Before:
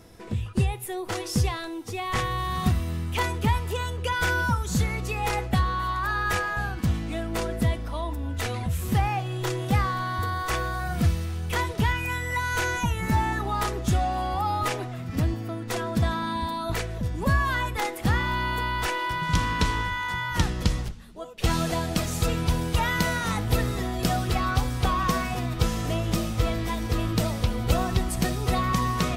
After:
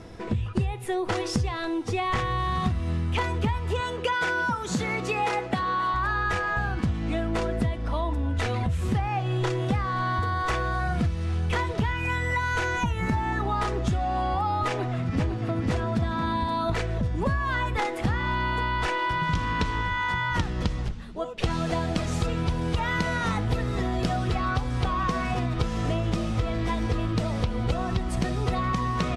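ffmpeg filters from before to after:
-filter_complex "[0:a]asettb=1/sr,asplit=3[s0][s1][s2];[s0]atrim=end=3.804[s3];[s1]atrim=start=3.8:end=5.94,asetpts=PTS-STARTPTS,afade=t=in:d=0.004:c=qsin,afade=t=out:st=2.136:d=0.004:c=qsin,highpass=210[s4];[s2]atrim=start=5.936[s5];[s3][s4]acrossfade=d=0.004:c1=hsin:c2=qsin[s6];[s6][s5]acrossfade=d=0.004:c1=qsin:c2=hsin,asplit=2[s7][s8];[s8]afade=t=in:st=14.69:d=0.01,afade=t=out:st=15.65:d=0.01,aecho=0:1:500|1000|1500|2000|2500:0.749894|0.262463|0.091862|0.0321517|0.0112531[s9];[s7][s9]amix=inputs=2:normalize=0,lowpass=f=11000:w=0.5412,lowpass=f=11000:w=1.3066,aemphasis=mode=reproduction:type=50fm,acompressor=threshold=0.0316:ratio=6,volume=2.24"

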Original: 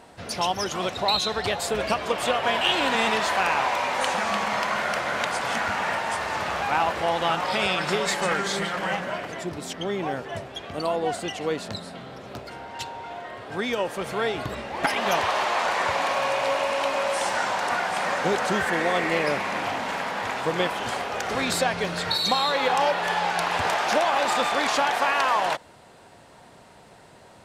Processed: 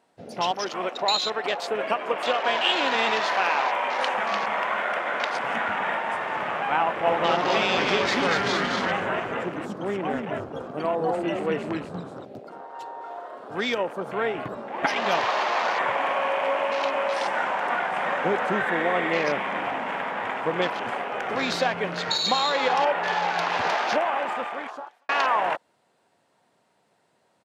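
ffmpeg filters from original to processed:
-filter_complex "[0:a]asettb=1/sr,asplit=3[s0][s1][s2];[s0]atrim=end=0.514[s3];[s1]atrim=start=0.51:end=5.35,asetpts=PTS-STARTPTS,afade=t=in:d=0.004:c=qsin,afade=t=out:st=4.836:d=0.004:c=qsin,highpass=260[s4];[s2]atrim=start=5.346[s5];[s3][s4]acrossfade=d=0.004:c1=hsin:c2=qsin[s6];[s6][s5]acrossfade=d=0.004:c1=qsin:c2=hsin,asplit=3[s7][s8][s9];[s7]afade=t=out:st=7.04:d=0.02[s10];[s8]asplit=9[s11][s12][s13][s14][s15][s16][s17][s18][s19];[s12]adelay=238,afreqshift=-150,volume=0.708[s20];[s13]adelay=476,afreqshift=-300,volume=0.398[s21];[s14]adelay=714,afreqshift=-450,volume=0.221[s22];[s15]adelay=952,afreqshift=-600,volume=0.124[s23];[s16]adelay=1190,afreqshift=-750,volume=0.07[s24];[s17]adelay=1428,afreqshift=-900,volume=0.0389[s25];[s18]adelay=1666,afreqshift=-1050,volume=0.0219[s26];[s19]adelay=1904,afreqshift=-1200,volume=0.0122[s27];[s11][s20][s21][s22][s23][s24][s25][s26][s27]amix=inputs=9:normalize=0,afade=t=in:st=7.04:d=0.02,afade=t=out:st=12.24:d=0.02[s28];[s9]afade=t=in:st=12.24:d=0.02[s29];[s10][s28][s29]amix=inputs=3:normalize=0,asettb=1/sr,asplit=3[s30][s31][s32];[s30]atrim=end=13.014[s33];[s31]atrim=start=13.01:end=13.78,asetpts=PTS-STARTPTS,afade=t=in:d=0.004:c=qsin,afade=t=out:st=0.766:d=0.004:c=qsin,highshelf=f=2800:g=7[s34];[s32]atrim=start=13.776[s35];[s33][s34]acrossfade=d=0.004:c1=hsin:c2=qsin[s36];[s36][s35]acrossfade=d=0.004:c1=qsin:c2=hsin,asplit=2[s37][s38];[s37]atrim=end=25.09,asetpts=PTS-STARTPTS,afade=t=out:st=23.76:d=1.33[s39];[s38]atrim=start=25.09,asetpts=PTS-STARTPTS,afade=t=in:d=0.004:c=hsin[s40];[s39][s40]concat=n=2:v=0:a=1,highpass=160,afwtdn=0.02"

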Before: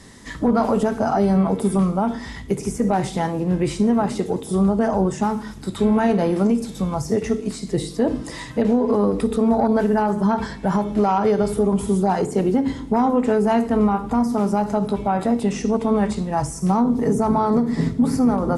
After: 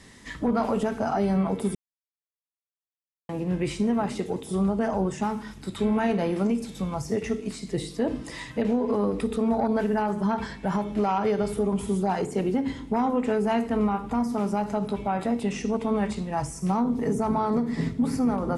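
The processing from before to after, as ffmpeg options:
-filter_complex "[0:a]asplit=3[s0][s1][s2];[s0]atrim=end=1.75,asetpts=PTS-STARTPTS,afade=t=out:st=1.746:d=0.004:c=hsin[s3];[s1]atrim=start=1.75:end=3.29,asetpts=PTS-STARTPTS,volume=0[s4];[s2]atrim=start=3.29,asetpts=PTS-STARTPTS,afade=t=in:d=0.004:c=hsin[s5];[s3][s4][s5]concat=n=3:v=0:a=1,equalizer=f=2500:t=o:w=1:g=6,volume=0.473"

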